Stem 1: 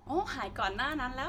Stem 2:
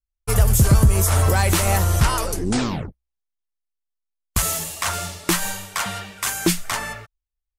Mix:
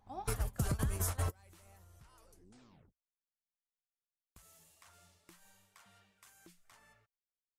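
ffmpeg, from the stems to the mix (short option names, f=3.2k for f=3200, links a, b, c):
-filter_complex "[0:a]equalizer=f=340:w=4.1:g=-13,volume=-10.5dB,asplit=2[a][b];[1:a]acompressor=threshold=-26dB:ratio=4,volume=2dB[c];[b]apad=whole_len=334461[d];[c][d]sidechaingate=range=-35dB:threshold=-46dB:ratio=16:detection=peak[e];[a][e]amix=inputs=2:normalize=0,acompressor=threshold=-32dB:ratio=4"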